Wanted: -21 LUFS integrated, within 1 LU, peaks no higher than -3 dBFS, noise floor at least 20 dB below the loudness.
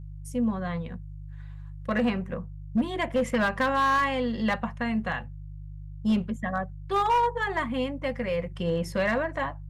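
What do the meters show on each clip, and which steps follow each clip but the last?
clipped samples 1.0%; clipping level -18.5 dBFS; hum 50 Hz; highest harmonic 150 Hz; hum level -38 dBFS; loudness -27.5 LUFS; peak level -18.5 dBFS; loudness target -21.0 LUFS
-> clip repair -18.5 dBFS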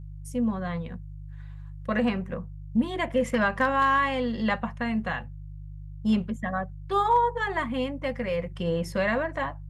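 clipped samples 0.0%; hum 50 Hz; highest harmonic 150 Hz; hum level -38 dBFS
-> de-hum 50 Hz, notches 3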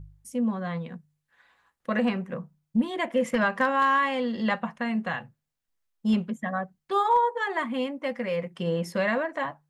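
hum not found; loudness -27.5 LUFS; peak level -12.0 dBFS; loudness target -21.0 LUFS
-> trim +6.5 dB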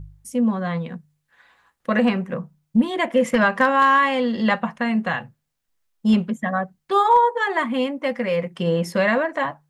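loudness -21.0 LUFS; peak level -5.5 dBFS; noise floor -75 dBFS

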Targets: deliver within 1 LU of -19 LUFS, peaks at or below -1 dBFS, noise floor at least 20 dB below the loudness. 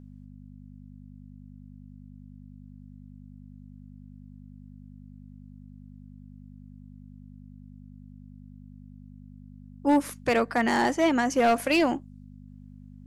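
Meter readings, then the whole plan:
clipped samples 0.3%; clipping level -16.0 dBFS; hum 50 Hz; highest harmonic 250 Hz; hum level -44 dBFS; loudness -24.5 LUFS; peak level -16.0 dBFS; loudness target -19.0 LUFS
-> clip repair -16 dBFS; de-hum 50 Hz, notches 5; trim +5.5 dB

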